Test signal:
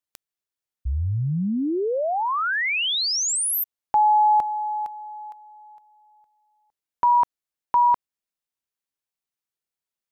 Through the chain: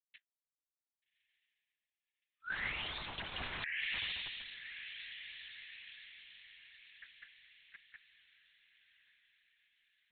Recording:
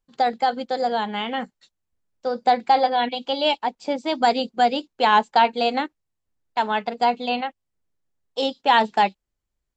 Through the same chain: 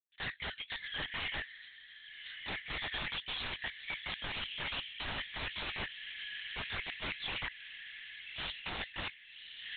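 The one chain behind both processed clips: steep high-pass 1.7 kHz 96 dB/octave; expander -54 dBFS; low-pass 2.9 kHz 6 dB/octave; short-mantissa float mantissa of 2-bit; flange 0.89 Hz, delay 5.6 ms, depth 9.7 ms, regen -54%; echo that smears into a reverb 1198 ms, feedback 40%, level -14 dB; integer overflow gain 36 dB; LPC vocoder at 8 kHz whisper; trim +7.5 dB

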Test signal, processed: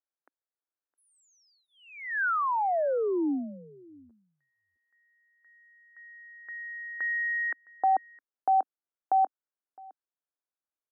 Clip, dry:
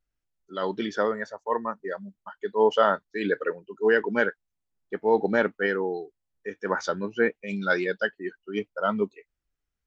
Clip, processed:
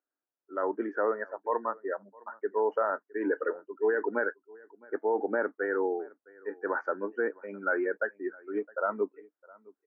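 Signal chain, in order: peak limiter -17 dBFS; elliptic band-pass 280–1600 Hz, stop band 40 dB; delay 662 ms -24 dB

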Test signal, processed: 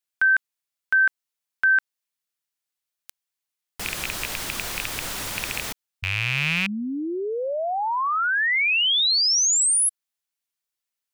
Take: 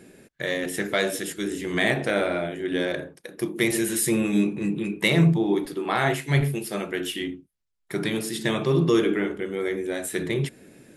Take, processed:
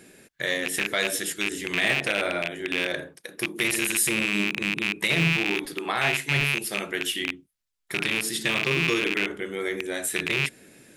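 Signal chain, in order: rattle on loud lows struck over -31 dBFS, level -12 dBFS; tilt shelf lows -4.5 dB; peak limiter -12 dBFS

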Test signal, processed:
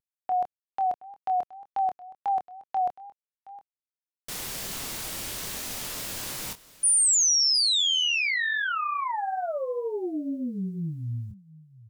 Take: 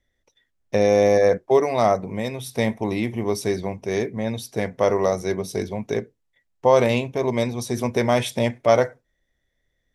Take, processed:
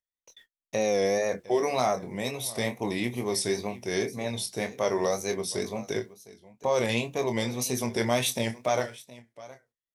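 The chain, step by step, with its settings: upward compressor, threshold -40 dBFS; bass shelf 87 Hz -6.5 dB; peak limiter -11.5 dBFS; treble shelf 2.8 kHz +10.5 dB; bit crusher 11-bit; gate -47 dBFS, range -42 dB; doubling 25 ms -7.5 dB; delay 714 ms -19 dB; wow and flutter 89 cents; trim -6 dB

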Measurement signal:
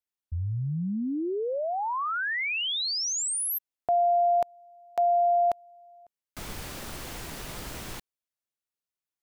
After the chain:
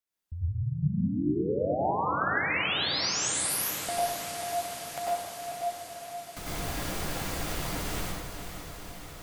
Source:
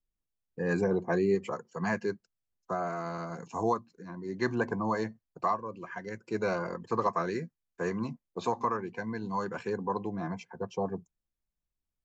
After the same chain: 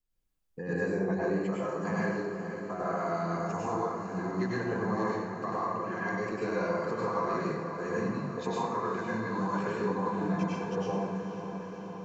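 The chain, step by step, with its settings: compression 3:1, threshold -38 dBFS; on a send: echo that smears into a reverb 488 ms, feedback 73%, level -9.5 dB; on the sum: plate-style reverb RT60 1.1 s, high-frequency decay 0.65×, pre-delay 85 ms, DRR -6.5 dB

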